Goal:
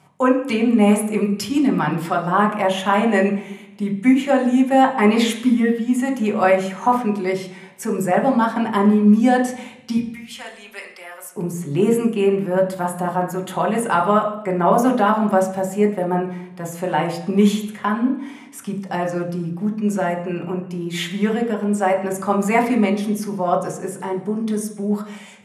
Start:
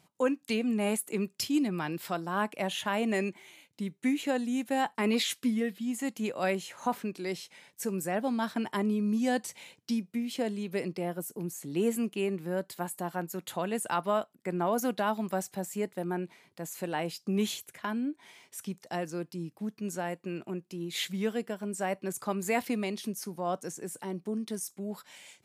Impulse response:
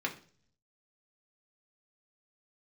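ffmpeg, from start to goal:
-filter_complex "[0:a]asettb=1/sr,asplit=3[a][b][c];[a]atrim=end=9.974[d];[b]atrim=start=9.97:end=11.35,asetpts=PTS-STARTPTS,afade=t=in:d=0.004:c=qsin,afade=t=out:st=1.376:d=0.004:c=qsin,highpass=1.5k[e];[c]atrim=start=11.346[f];[d][e]acrossfade=d=0.004:c1=hsin:c2=qsin[g];[g][f]acrossfade=d=0.004:c1=qsin:c2=hsin[h];[1:a]atrim=start_sample=2205,asetrate=22491,aresample=44100[i];[h][i]afir=irnorm=-1:irlink=0,volume=4dB"

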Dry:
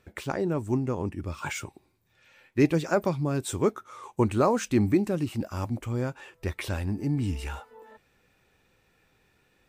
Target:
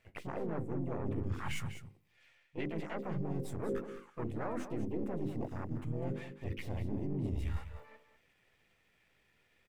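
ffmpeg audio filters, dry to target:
-filter_complex "[0:a]aeval=exprs='if(lt(val(0),0),0.447*val(0),val(0))':c=same,afwtdn=0.02,equalizer=f=2k:t=o:w=0.33:g=11.5,bandreject=f=50:t=h:w=6,bandreject=f=100:t=h:w=6,bandreject=f=150:t=h:w=6,bandreject=f=200:t=h:w=6,bandreject=f=250:t=h:w=6,bandreject=f=300:t=h:w=6,bandreject=f=350:t=h:w=6,bandreject=f=400:t=h:w=6,areverse,acompressor=threshold=-41dB:ratio=6,areverse,alimiter=level_in=15.5dB:limit=-24dB:level=0:latency=1:release=16,volume=-15.5dB,acontrast=85,aeval=exprs='0.0251*(cos(1*acos(clip(val(0)/0.0251,-1,1)))-cos(1*PI/2))+0.0002*(cos(5*acos(clip(val(0)/0.0251,-1,1)))-cos(5*PI/2))':c=same,asplit=3[a][b][c];[b]asetrate=52444,aresample=44100,atempo=0.840896,volume=-11dB[d];[c]asetrate=58866,aresample=44100,atempo=0.749154,volume=-4dB[e];[a][d][e]amix=inputs=3:normalize=0,asplit=2[f][g];[g]aecho=0:1:198:0.282[h];[f][h]amix=inputs=2:normalize=0,volume=1.5dB"

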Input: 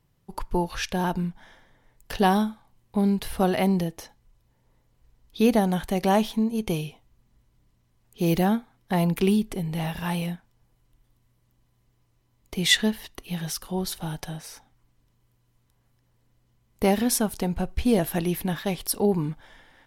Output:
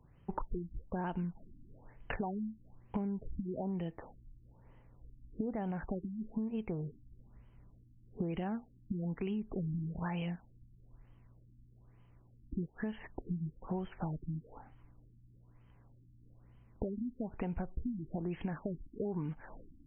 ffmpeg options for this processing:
-af "alimiter=limit=-18dB:level=0:latency=1:release=73,acompressor=threshold=-38dB:ratio=12,aeval=exprs='val(0)+0.000251*(sin(2*PI*60*n/s)+sin(2*PI*2*60*n/s)/2+sin(2*PI*3*60*n/s)/3+sin(2*PI*4*60*n/s)/4+sin(2*PI*5*60*n/s)/5)':c=same,afftfilt=real='re*lt(b*sr/1024,320*pow(3300/320,0.5+0.5*sin(2*PI*1.1*pts/sr)))':imag='im*lt(b*sr/1024,320*pow(3300/320,0.5+0.5*sin(2*PI*1.1*pts/sr)))':win_size=1024:overlap=0.75,volume=4.5dB"

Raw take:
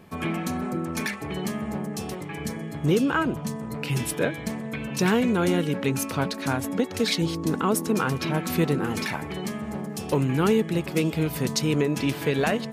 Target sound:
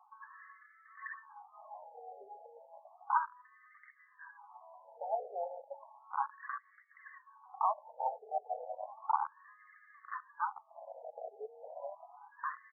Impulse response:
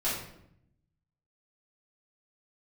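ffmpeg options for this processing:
-filter_complex "[0:a]aphaser=in_gain=1:out_gain=1:delay=4.1:decay=0.53:speed=0.74:type=sinusoidal,acrossover=split=630|1200[a][b][c];[c]asoftclip=type=tanh:threshold=-28.5dB[d];[a][b][d]amix=inputs=3:normalize=0,aecho=1:1:1.1:0.93,bandreject=f=68.13:t=h:w=4,bandreject=f=136.26:t=h:w=4,bandreject=f=204.39:t=h:w=4,bandreject=f=272.52:t=h:w=4,bandreject=f=340.65:t=h:w=4,bandreject=f=408.78:t=h:w=4,bandreject=f=476.91:t=h:w=4,bandreject=f=545.04:t=h:w=4,asplit=2[e][f];[f]equalizer=f=1.2k:t=o:w=0.31:g=11[g];[1:a]atrim=start_sample=2205,atrim=end_sample=6174[h];[g][h]afir=irnorm=-1:irlink=0,volume=-27.5dB[i];[e][i]amix=inputs=2:normalize=0,afwtdn=0.0794,lowshelf=f=250:g=6,acompressor=threshold=-26dB:ratio=5,afftfilt=real='re*between(b*sr/1024,600*pow(1600/600,0.5+0.5*sin(2*PI*0.33*pts/sr))/1.41,600*pow(1600/600,0.5+0.5*sin(2*PI*0.33*pts/sr))*1.41)':imag='im*between(b*sr/1024,600*pow(1600/600,0.5+0.5*sin(2*PI*0.33*pts/sr))/1.41,600*pow(1600/600,0.5+0.5*sin(2*PI*0.33*pts/sr))*1.41)':win_size=1024:overlap=0.75,volume=4dB"

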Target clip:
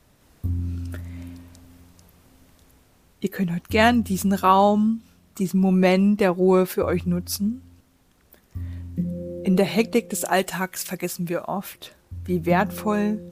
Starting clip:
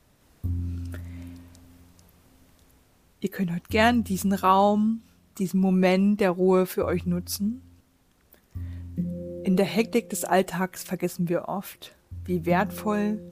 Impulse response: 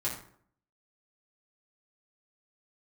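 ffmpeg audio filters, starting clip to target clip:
-filter_complex "[0:a]asettb=1/sr,asplit=3[a][b][c];[a]atrim=end=10.254[d];[b]atrim=start=10.25:end=11.48,asetpts=PTS-STARTPTS,afade=t=in:d=0.004:c=qsin,afade=t=out:st=1.226:d=0.004:c=qsin,tiltshelf=f=1.3k:g=-4.5[e];[c]atrim=start=11.476[f];[d][e]acrossfade=d=0.004:c1=hsin:c2=qsin[g];[g][f]acrossfade=d=0.004:c1=qsin:c2=hsin,volume=3dB"

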